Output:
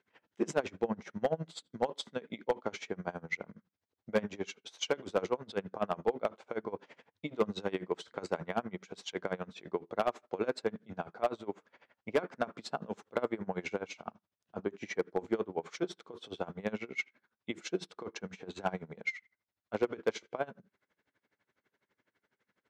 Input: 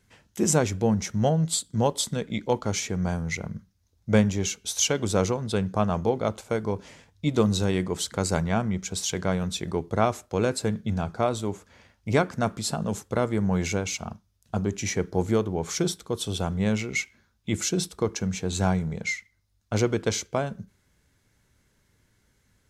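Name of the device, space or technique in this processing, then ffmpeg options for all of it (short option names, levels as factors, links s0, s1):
helicopter radio: -af "highpass=330,lowpass=2600,aeval=exprs='val(0)*pow(10,-23*(0.5-0.5*cos(2*PI*12*n/s))/20)':c=same,asoftclip=type=hard:threshold=0.1"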